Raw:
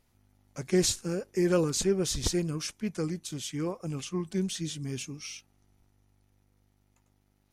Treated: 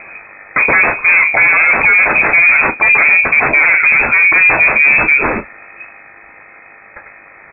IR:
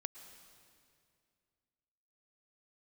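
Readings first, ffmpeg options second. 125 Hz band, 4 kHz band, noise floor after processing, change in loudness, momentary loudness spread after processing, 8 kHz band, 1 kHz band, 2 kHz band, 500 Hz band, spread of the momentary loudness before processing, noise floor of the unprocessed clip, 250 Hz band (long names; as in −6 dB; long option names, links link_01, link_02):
+1.0 dB, below −20 dB, −40 dBFS, +22.5 dB, 4 LU, below −40 dB, +29.0 dB, +39.5 dB, +8.5 dB, 13 LU, −70 dBFS, +3.0 dB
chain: -af "highpass=frequency=93:poles=1,aemphasis=mode=production:type=75kf,bandreject=frequency=50:width_type=h:width=6,bandreject=frequency=100:width_type=h:width=6,bandreject=frequency=150:width_type=h:width=6,bandreject=frequency=200:width_type=h:width=6,bandreject=frequency=250:width_type=h:width=6,bandreject=frequency=300:width_type=h:width=6,bandreject=frequency=350:width_type=h:width=6,acompressor=threshold=-28dB:ratio=6,aeval=exprs='0.141*(cos(1*acos(clip(val(0)/0.141,-1,1)))-cos(1*PI/2))+0.0447*(cos(3*acos(clip(val(0)/0.141,-1,1)))-cos(3*PI/2))+0.0447*(cos(7*acos(clip(val(0)/0.141,-1,1)))-cos(7*PI/2))':channel_layout=same,aresample=11025,asoftclip=type=tanh:threshold=-35.5dB,aresample=44100,aecho=1:1:11|36:0.335|0.224,lowpass=frequency=2200:width_type=q:width=0.5098,lowpass=frequency=2200:width_type=q:width=0.6013,lowpass=frequency=2200:width_type=q:width=0.9,lowpass=frequency=2200:width_type=q:width=2.563,afreqshift=-2600,alimiter=level_in=35dB:limit=-1dB:release=50:level=0:latency=1,volume=-1dB"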